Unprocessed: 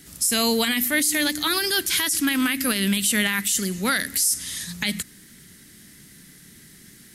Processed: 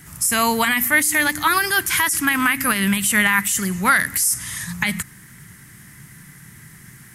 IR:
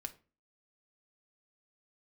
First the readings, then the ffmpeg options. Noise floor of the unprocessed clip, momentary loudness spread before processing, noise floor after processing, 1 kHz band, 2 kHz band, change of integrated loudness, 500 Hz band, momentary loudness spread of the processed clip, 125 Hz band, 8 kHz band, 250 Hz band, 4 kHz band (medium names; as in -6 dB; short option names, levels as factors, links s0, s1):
-49 dBFS, 7 LU, -45 dBFS, +10.5 dB, +7.5 dB, +3.5 dB, 0.0 dB, 7 LU, +4.5 dB, +2.0 dB, +1.0 dB, -2.5 dB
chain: -af "equalizer=f=125:t=o:w=1:g=11,equalizer=f=250:t=o:w=1:g=-6,equalizer=f=500:t=o:w=1:g=-6,equalizer=f=1000:t=o:w=1:g=10,equalizer=f=2000:t=o:w=1:g=4,equalizer=f=4000:t=o:w=1:g=-10,volume=1.5"